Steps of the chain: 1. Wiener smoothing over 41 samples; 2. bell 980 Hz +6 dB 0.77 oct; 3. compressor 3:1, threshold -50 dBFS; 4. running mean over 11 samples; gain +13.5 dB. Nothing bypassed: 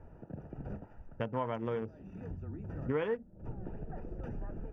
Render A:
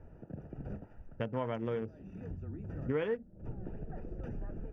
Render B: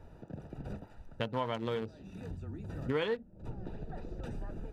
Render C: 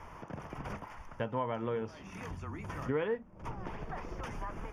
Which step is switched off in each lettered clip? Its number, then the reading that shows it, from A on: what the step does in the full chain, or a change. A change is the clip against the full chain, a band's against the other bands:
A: 2, 1 kHz band -3.5 dB; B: 4, 2 kHz band +3.0 dB; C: 1, 2 kHz band +4.0 dB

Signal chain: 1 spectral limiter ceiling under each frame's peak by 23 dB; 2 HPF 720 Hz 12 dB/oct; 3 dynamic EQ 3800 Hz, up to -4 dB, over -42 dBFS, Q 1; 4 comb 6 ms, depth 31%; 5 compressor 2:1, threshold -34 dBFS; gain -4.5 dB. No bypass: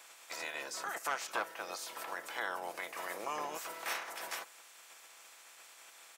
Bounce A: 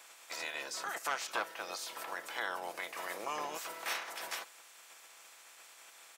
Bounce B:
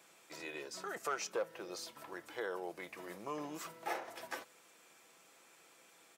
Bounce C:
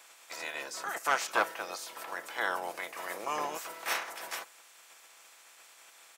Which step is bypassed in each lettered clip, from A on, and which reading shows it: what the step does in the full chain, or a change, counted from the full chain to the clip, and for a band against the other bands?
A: 3, 4 kHz band +2.5 dB; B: 1, 125 Hz band +11.0 dB; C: 5, crest factor change +4.0 dB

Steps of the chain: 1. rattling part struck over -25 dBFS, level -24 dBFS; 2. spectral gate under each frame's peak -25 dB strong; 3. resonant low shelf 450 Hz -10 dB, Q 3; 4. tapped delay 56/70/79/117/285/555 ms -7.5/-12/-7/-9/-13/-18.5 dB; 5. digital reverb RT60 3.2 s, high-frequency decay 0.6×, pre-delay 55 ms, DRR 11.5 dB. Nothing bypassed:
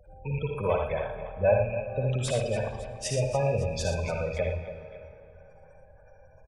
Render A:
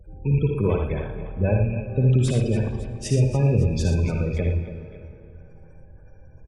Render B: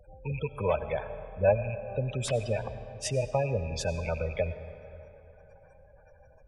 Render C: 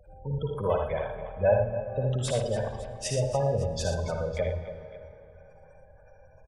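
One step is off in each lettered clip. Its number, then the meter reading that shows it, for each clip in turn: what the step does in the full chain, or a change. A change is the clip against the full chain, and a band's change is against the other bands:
3, 250 Hz band +13.0 dB; 4, echo-to-direct -1.5 dB to -11.5 dB; 1, 2 kHz band -3.5 dB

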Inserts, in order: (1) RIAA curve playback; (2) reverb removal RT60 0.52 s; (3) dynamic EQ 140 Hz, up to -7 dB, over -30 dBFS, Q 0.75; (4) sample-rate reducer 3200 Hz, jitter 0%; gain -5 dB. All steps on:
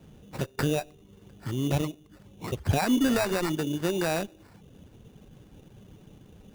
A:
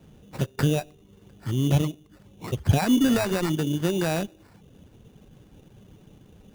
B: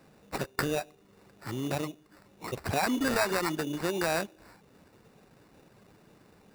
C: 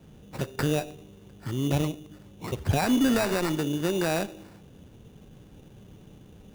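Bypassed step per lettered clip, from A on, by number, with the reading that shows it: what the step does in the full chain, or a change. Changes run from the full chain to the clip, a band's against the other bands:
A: 3, 125 Hz band +5.0 dB; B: 1, 125 Hz band -7.0 dB; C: 2, momentary loudness spread change +2 LU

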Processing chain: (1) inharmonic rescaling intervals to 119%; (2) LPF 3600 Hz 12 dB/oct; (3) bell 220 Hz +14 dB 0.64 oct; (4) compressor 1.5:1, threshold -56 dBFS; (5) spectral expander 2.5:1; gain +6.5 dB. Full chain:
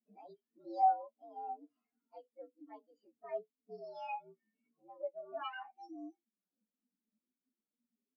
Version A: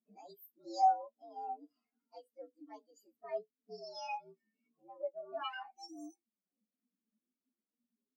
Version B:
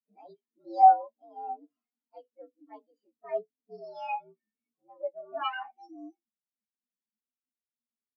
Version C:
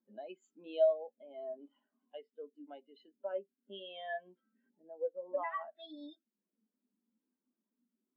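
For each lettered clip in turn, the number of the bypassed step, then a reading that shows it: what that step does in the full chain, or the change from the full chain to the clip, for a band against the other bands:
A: 2, 4 kHz band +6.5 dB; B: 4, mean gain reduction 5.5 dB; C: 1, 1 kHz band -15.0 dB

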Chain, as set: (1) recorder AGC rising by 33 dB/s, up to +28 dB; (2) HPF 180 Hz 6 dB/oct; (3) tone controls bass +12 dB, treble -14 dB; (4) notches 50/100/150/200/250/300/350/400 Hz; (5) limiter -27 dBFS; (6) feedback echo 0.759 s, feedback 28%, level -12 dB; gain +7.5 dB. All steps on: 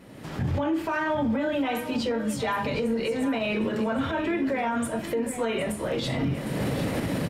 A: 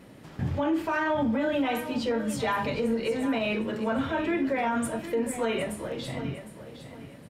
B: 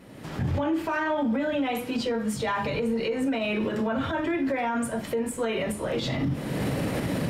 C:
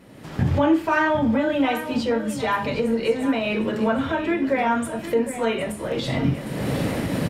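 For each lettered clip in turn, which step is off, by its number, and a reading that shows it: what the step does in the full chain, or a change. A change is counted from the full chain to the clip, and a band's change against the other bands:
1, momentary loudness spread change +8 LU; 6, crest factor change -2.0 dB; 5, mean gain reduction 3.0 dB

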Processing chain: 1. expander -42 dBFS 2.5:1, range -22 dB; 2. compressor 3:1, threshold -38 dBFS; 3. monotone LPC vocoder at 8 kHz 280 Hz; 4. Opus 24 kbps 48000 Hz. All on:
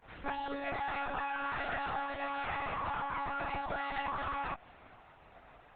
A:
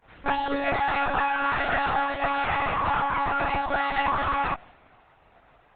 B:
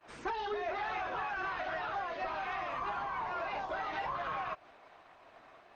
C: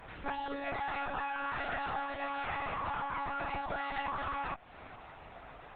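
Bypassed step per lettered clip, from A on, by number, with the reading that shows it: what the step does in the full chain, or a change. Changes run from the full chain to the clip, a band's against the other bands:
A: 2, mean gain reduction 9.0 dB; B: 3, 125 Hz band -5.5 dB; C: 1, momentary loudness spread change +12 LU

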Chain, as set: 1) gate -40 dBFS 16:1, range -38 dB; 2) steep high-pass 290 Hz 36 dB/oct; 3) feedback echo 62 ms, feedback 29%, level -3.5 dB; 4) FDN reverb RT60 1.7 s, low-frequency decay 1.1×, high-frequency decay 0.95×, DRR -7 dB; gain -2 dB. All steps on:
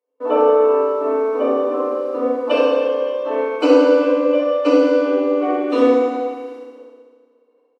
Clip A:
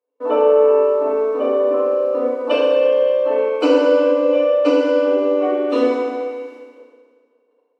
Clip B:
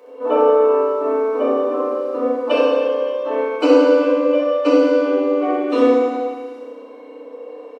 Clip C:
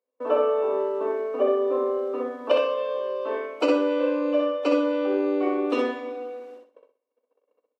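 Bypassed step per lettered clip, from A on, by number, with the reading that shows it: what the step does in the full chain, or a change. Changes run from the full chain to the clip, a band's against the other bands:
3, echo-to-direct 9.0 dB to 7.0 dB; 1, momentary loudness spread change +10 LU; 4, echo-to-direct 9.0 dB to -3.0 dB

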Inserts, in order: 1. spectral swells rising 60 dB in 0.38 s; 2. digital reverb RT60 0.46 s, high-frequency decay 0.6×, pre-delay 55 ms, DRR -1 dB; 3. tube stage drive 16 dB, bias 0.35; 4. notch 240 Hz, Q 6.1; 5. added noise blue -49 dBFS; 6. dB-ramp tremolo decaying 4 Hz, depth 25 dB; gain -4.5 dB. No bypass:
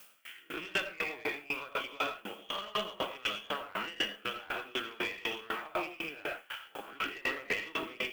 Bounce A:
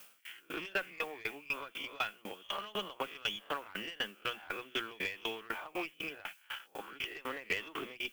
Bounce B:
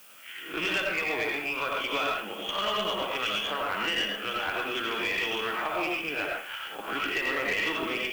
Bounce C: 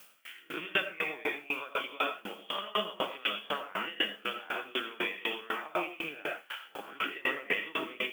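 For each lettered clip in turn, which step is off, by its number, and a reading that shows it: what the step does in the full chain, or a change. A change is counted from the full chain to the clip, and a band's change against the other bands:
2, crest factor change +2.5 dB; 6, momentary loudness spread change -3 LU; 3, crest factor change +3.0 dB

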